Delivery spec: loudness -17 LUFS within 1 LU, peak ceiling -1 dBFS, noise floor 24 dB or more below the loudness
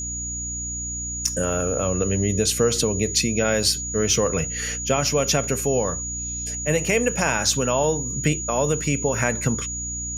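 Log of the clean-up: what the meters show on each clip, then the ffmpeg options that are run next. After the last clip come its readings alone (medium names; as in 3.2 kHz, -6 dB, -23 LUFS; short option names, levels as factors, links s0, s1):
hum 60 Hz; highest harmonic 300 Hz; hum level -33 dBFS; steady tone 6.8 kHz; tone level -28 dBFS; loudness -22.0 LUFS; peak level -4.5 dBFS; loudness target -17.0 LUFS
-> -af "bandreject=f=60:t=h:w=6,bandreject=f=120:t=h:w=6,bandreject=f=180:t=h:w=6,bandreject=f=240:t=h:w=6,bandreject=f=300:t=h:w=6"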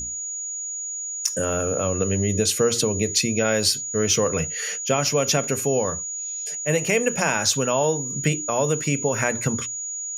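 hum not found; steady tone 6.8 kHz; tone level -28 dBFS
-> -af "bandreject=f=6800:w=30"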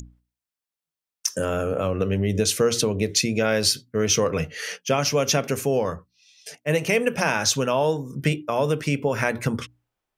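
steady tone not found; loudness -23.0 LUFS; peak level -6.0 dBFS; loudness target -17.0 LUFS
-> -af "volume=2,alimiter=limit=0.891:level=0:latency=1"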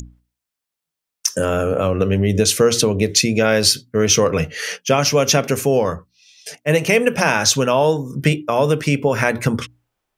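loudness -17.0 LUFS; peak level -1.0 dBFS; noise floor -84 dBFS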